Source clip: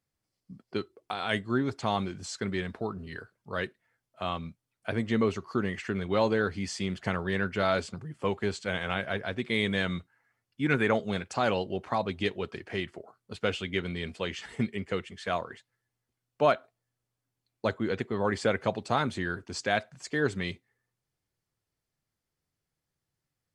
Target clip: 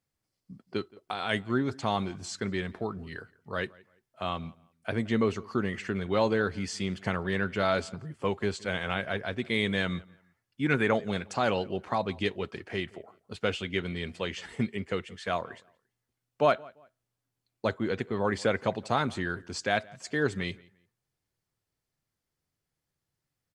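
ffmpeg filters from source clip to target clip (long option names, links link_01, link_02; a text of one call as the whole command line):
ffmpeg -i in.wav -filter_complex "[0:a]asplit=2[link_01][link_02];[link_02]adelay=172,lowpass=frequency=3100:poles=1,volume=-23.5dB,asplit=2[link_03][link_04];[link_04]adelay=172,lowpass=frequency=3100:poles=1,volume=0.28[link_05];[link_01][link_03][link_05]amix=inputs=3:normalize=0" out.wav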